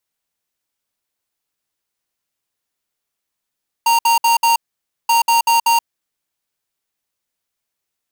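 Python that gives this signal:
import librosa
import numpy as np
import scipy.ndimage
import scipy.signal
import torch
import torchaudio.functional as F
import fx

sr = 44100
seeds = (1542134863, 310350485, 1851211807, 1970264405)

y = fx.beep_pattern(sr, wave='square', hz=927.0, on_s=0.13, off_s=0.06, beeps=4, pause_s=0.53, groups=2, level_db=-13.0)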